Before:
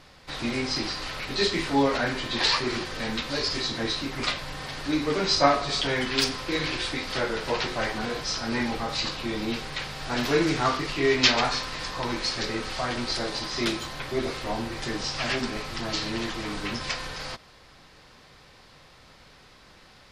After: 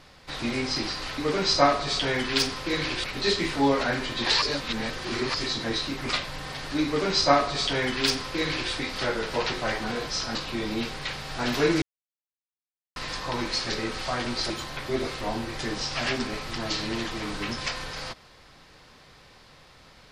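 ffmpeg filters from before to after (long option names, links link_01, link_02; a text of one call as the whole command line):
ffmpeg -i in.wav -filter_complex "[0:a]asplit=9[link_01][link_02][link_03][link_04][link_05][link_06][link_07][link_08][link_09];[link_01]atrim=end=1.182[link_10];[link_02]atrim=start=4.998:end=6.862[link_11];[link_03]atrim=start=1.178:end=2.562[link_12];[link_04]atrim=start=2.558:end=3.482,asetpts=PTS-STARTPTS,areverse[link_13];[link_05]atrim=start=3.478:end=8.492[link_14];[link_06]atrim=start=9.058:end=10.53,asetpts=PTS-STARTPTS,afade=type=out:start_time=1.468:duration=0.004:curve=hsin[link_15];[link_07]atrim=start=10.53:end=11.67,asetpts=PTS-STARTPTS,volume=0[link_16];[link_08]atrim=start=11.67:end=13.212,asetpts=PTS-STARTPTS,afade=type=in:duration=0.004:curve=hsin[link_17];[link_09]atrim=start=13.728[link_18];[link_10][link_11]acrossfade=duration=0.004:curve1=hsin:curve2=hsin[link_19];[link_19][link_12]acrossfade=duration=0.004:curve1=hsin:curve2=hsin[link_20];[link_20][link_13]acrossfade=duration=0.004:curve1=hsin:curve2=hsin[link_21];[link_21][link_14]acrossfade=duration=0.004:curve1=hsin:curve2=hsin[link_22];[link_15][link_16][link_17]concat=n=3:v=0:a=1[link_23];[link_22][link_23]acrossfade=duration=0.004:curve1=hsin:curve2=hsin[link_24];[link_24][link_18]acrossfade=duration=0.004:curve1=hsin:curve2=hsin" out.wav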